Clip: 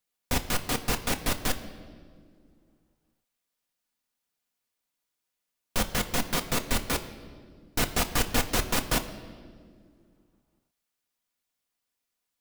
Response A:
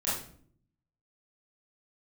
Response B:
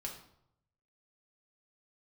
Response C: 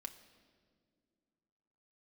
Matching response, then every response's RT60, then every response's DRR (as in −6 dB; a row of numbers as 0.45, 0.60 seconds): C; 0.55, 0.75, 2.1 seconds; −10.5, −1.0, 5.5 decibels